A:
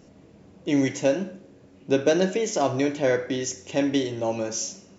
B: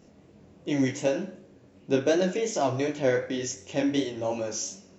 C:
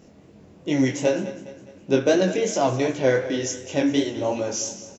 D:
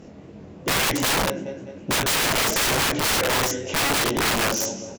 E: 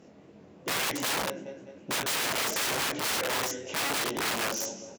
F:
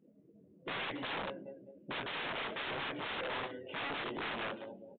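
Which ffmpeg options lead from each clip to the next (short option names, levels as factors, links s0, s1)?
-af "flanger=delay=19.5:depth=5.3:speed=2.7"
-af "aecho=1:1:206|412|618|824:0.178|0.0854|0.041|0.0197,volume=1.68"
-af "aemphasis=mode=reproduction:type=cd,aeval=exprs='(mod(15*val(0)+1,2)-1)/15':c=same,volume=2.24"
-af "highpass=f=240:p=1,volume=0.422"
-af "afftdn=nr=23:nf=-45,aresample=8000,aeval=exprs='clip(val(0),-1,0.0355)':c=same,aresample=44100,volume=0.447"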